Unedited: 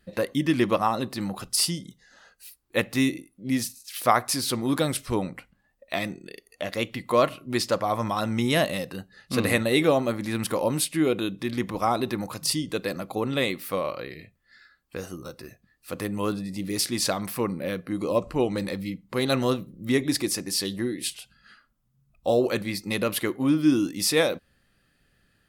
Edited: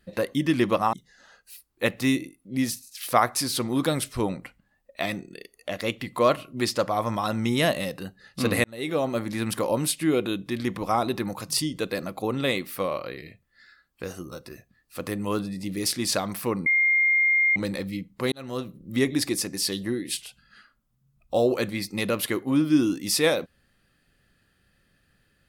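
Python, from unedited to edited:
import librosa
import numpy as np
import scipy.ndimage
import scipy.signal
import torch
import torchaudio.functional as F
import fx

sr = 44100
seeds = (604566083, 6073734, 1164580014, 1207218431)

y = fx.edit(x, sr, fx.cut(start_s=0.93, length_s=0.93),
    fx.fade_in_span(start_s=9.57, length_s=0.59),
    fx.bleep(start_s=17.59, length_s=0.9, hz=2120.0, db=-17.5),
    fx.fade_in_span(start_s=19.25, length_s=0.56), tone=tone)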